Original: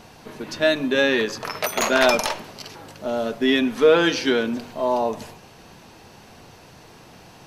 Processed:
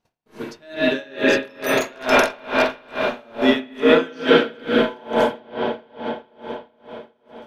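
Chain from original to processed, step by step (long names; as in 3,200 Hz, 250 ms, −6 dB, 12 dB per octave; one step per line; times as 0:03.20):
noise gate −43 dBFS, range −34 dB
convolution reverb RT60 5.6 s, pre-delay 35 ms, DRR −6.5 dB
tremolo with a sine in dB 2.3 Hz, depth 30 dB
level +1.5 dB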